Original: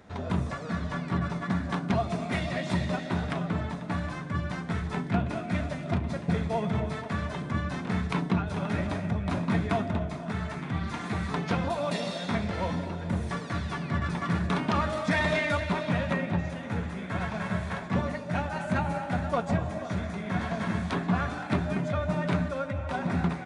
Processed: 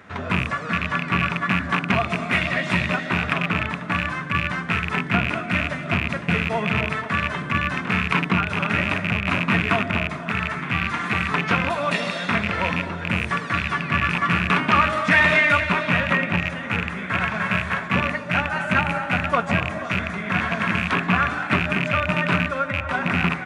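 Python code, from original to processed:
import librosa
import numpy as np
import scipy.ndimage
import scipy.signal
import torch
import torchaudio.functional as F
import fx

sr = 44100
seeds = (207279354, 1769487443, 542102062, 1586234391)

y = fx.rattle_buzz(x, sr, strikes_db=-29.0, level_db=-23.0)
y = scipy.signal.sosfilt(scipy.signal.butter(2, 71.0, 'highpass', fs=sr, output='sos'), y)
y = fx.band_shelf(y, sr, hz=1800.0, db=9.0, octaves=1.7)
y = y * 10.0 ** (4.0 / 20.0)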